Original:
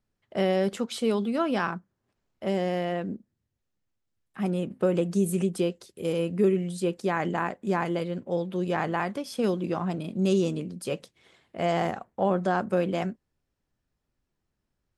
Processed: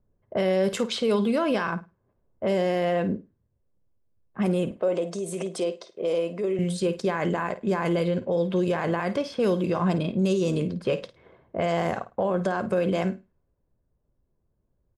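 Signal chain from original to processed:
low-pass that shuts in the quiet parts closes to 690 Hz, open at −24 dBFS
comb filter 1.9 ms, depth 32%
in parallel at −2 dB: speech leveller 0.5 s
on the sum: brickwall limiter −19 dBFS, peak gain reduction 11 dB
0:04.71–0:06.59: loudspeaker in its box 340–8,200 Hz, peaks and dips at 430 Hz −3 dB, 660 Hz +7 dB, 1,600 Hz −6 dB, 2,700 Hz −4 dB, 4,300 Hz −3 dB, 7,200 Hz −4 dB
on a send: flutter between parallel walls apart 9.1 metres, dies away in 0.24 s
on the sum: level +2.5 dB

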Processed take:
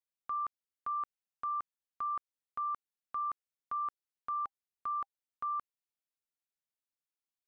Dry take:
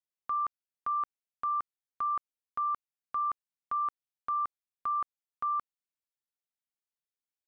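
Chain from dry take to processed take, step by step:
0:04.43–0:05.48: notch filter 800 Hz, Q 18
level −4.5 dB

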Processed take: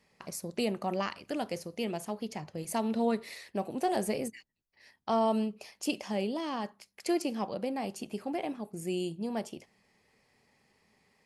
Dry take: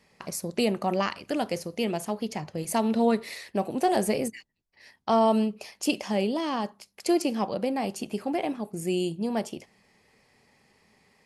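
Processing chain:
0:06.61–0:07.19: parametric band 1,900 Hz +5.5 dB 0.77 octaves
level −6 dB

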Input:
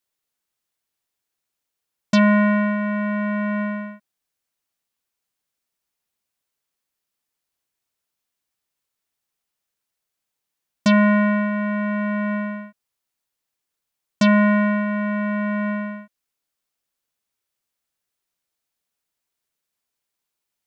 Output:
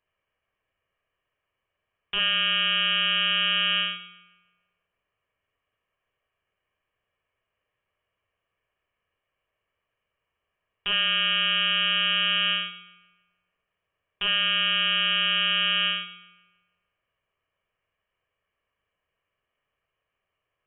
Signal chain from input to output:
lower of the sound and its delayed copy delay 1.7 ms
high-pass filter 210 Hz
low-shelf EQ 420 Hz −7 dB
in parallel at +3 dB: compressor whose output falls as the input rises −30 dBFS
on the sum: brickwall limiter −13.5 dBFS, peak gain reduction 10 dB
feedback echo with a high-pass in the loop 155 ms, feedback 42%, high-pass 290 Hz, level −16 dB
on a send at −9 dB: convolution reverb RT60 0.45 s, pre-delay 3 ms
on the sum: voice inversion scrambler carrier 3,500 Hz

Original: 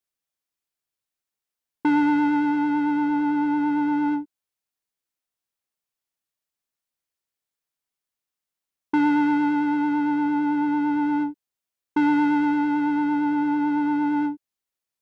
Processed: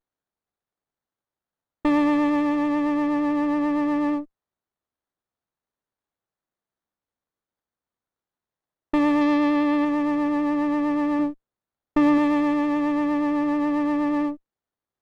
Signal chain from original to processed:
0:09.21–0:09.85: leveller curve on the samples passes 1
0:11.19–0:12.18: low-shelf EQ 200 Hz +7.5 dB
windowed peak hold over 17 samples

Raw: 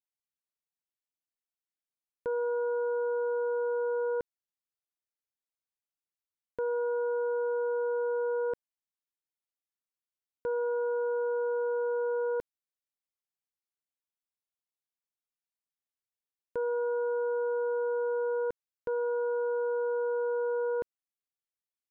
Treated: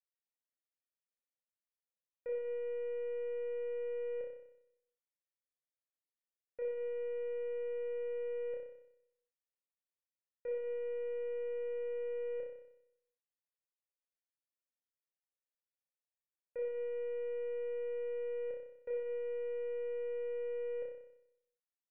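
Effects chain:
wavefolder on the positive side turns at −33 dBFS
formant resonators in series e
flutter between parallel walls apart 5.3 metres, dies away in 0.78 s

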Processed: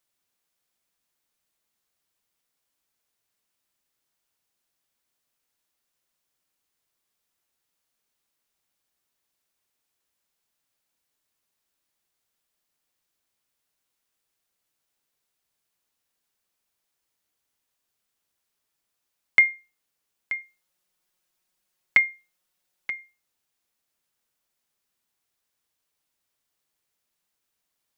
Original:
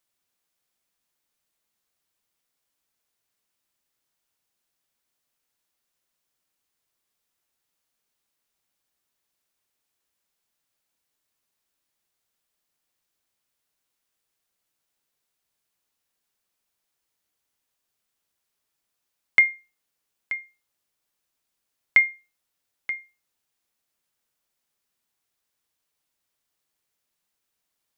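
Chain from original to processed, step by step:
0:20.41–0:22.99: comb filter 5.5 ms, depth 75%

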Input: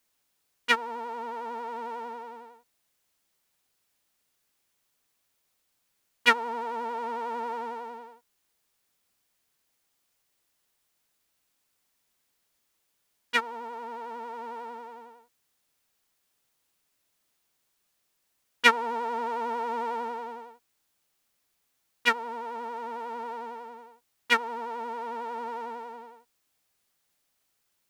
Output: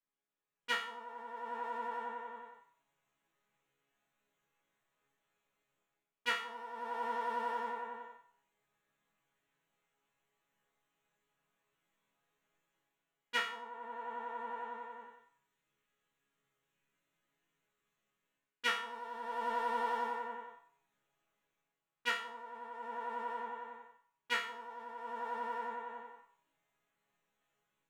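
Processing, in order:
adaptive Wiener filter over 9 samples
0:15.03–0:18.68: parametric band 770 Hz −7 dB 0.79 octaves
automatic gain control gain up to 14 dB
resonators tuned to a chord C#3 minor, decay 0.48 s
feedback echo with a band-pass in the loop 91 ms, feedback 44%, band-pass 1,100 Hz, level −14 dB
level +4 dB

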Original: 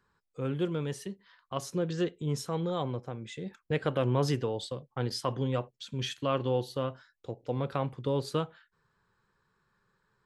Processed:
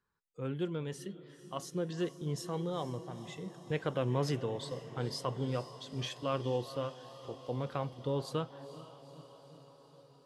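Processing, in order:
feedback delay with all-pass diffusion 463 ms, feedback 72%, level −13 dB
noise reduction from a noise print of the clip's start 7 dB
level −4.5 dB

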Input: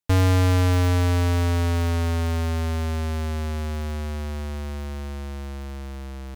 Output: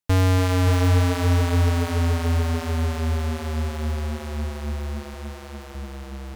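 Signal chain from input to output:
0:05.14–0:05.75: bass and treble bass −12 dB, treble 0 dB
echo machine with several playback heads 287 ms, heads first and second, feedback 47%, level −10 dB

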